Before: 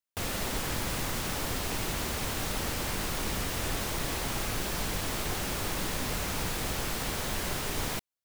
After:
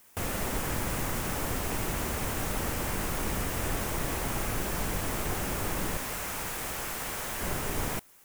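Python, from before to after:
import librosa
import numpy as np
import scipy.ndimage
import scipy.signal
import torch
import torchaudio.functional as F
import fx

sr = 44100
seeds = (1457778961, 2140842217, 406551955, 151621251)

p1 = fx.low_shelf(x, sr, hz=460.0, db=-10.5, at=(5.97, 7.41))
p2 = fx.quant_dither(p1, sr, seeds[0], bits=8, dither='triangular')
p3 = p1 + F.gain(torch.from_numpy(p2), -7.0).numpy()
p4 = fx.peak_eq(p3, sr, hz=4100.0, db=-8.5, octaves=1.1)
y = F.gain(torch.from_numpy(p4), -1.5).numpy()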